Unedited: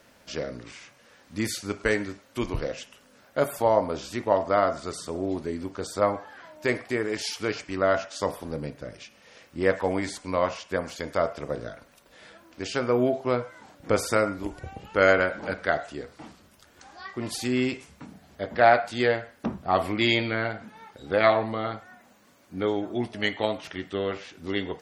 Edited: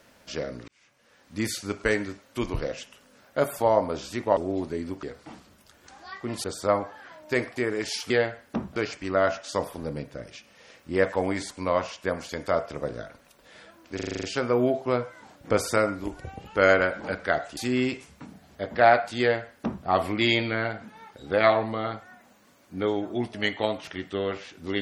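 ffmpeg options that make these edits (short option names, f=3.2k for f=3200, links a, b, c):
-filter_complex "[0:a]asplit=15[a][b][c][d][e][f][g][h][i][j][k][l][m][n][o];[a]atrim=end=0.68,asetpts=PTS-STARTPTS,afade=t=out:st=0.676:d=0.004:c=hsin[p];[b]atrim=start=0.68:end=4.372,asetpts=PTS-STARTPTS,afade=t=in:d=0.75[q];[c]atrim=start=5.108:end=5.772[r];[d]atrim=start=15.958:end=17.372[s];[e]atrim=start=5.768:end=7.432[t];[f]atrim=start=18.998:end=19.662[u];[g]atrim=start=7.428:end=12.662[v];[h]atrim=start=12.618:end=12.662[w];[i]atrim=start=12.618:end=12.662[x];[j]atrim=start=12.618:end=12.662[y];[k]atrim=start=12.618:end=12.662[z];[l]atrim=start=12.618:end=12.662[aa];[m]atrim=start=12.618:end=12.662[ab];[n]atrim=start=12.618:end=15.962[ac];[o]atrim=start=17.368[ad];[p][q]concat=n=2:v=0:a=1[ae];[ae][r]acrossfade=d=0.004:c1=hsin:c2=hsin[af];[af][s]acrossfade=d=0.004:c1=hsin:c2=hsin[ag];[ag][t]acrossfade=d=0.004:c1=hsin:c2=hsin[ah];[ah][u]acrossfade=d=0.004:c1=hsin:c2=hsin[ai];[ai][v]acrossfade=d=0.004:c1=hsin:c2=hsin[aj];[aj][w]acrossfade=d=0.004:c1=hsin:c2=hsin[ak];[ak][x]acrossfade=d=0.004:c1=hsin:c2=hsin[al];[al][y]acrossfade=d=0.004:c1=hsin:c2=hsin[am];[am][z]acrossfade=d=0.004:c1=hsin:c2=hsin[an];[an][aa]acrossfade=d=0.004:c1=hsin:c2=hsin[ao];[ao][ab]acrossfade=d=0.004:c1=hsin:c2=hsin[ap];[ap][ac]acrossfade=d=0.004:c1=hsin:c2=hsin[aq];[aq][ad]acrossfade=d=0.004:c1=hsin:c2=hsin"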